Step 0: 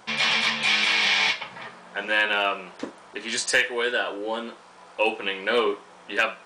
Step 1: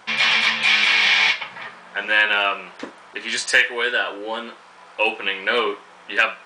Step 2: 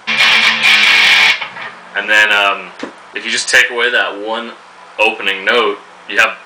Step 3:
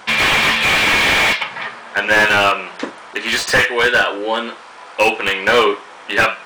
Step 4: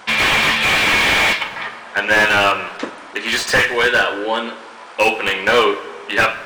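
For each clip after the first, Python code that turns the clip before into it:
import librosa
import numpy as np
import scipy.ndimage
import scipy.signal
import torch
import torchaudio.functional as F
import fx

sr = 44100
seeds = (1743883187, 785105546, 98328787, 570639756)

y1 = fx.peak_eq(x, sr, hz=2000.0, db=7.5, octaves=2.4)
y1 = F.gain(torch.from_numpy(y1), -1.5).numpy()
y2 = np.clip(y1, -10.0 ** (-10.0 / 20.0), 10.0 ** (-10.0 / 20.0))
y2 = F.gain(torch.from_numpy(y2), 8.5).numpy()
y3 = fx.hum_notches(y2, sr, base_hz=60, count=3)
y3 = fx.slew_limit(y3, sr, full_power_hz=550.0)
y4 = fx.rev_plate(y3, sr, seeds[0], rt60_s=1.7, hf_ratio=0.75, predelay_ms=0, drr_db=13.5)
y4 = F.gain(torch.from_numpy(y4), -1.0).numpy()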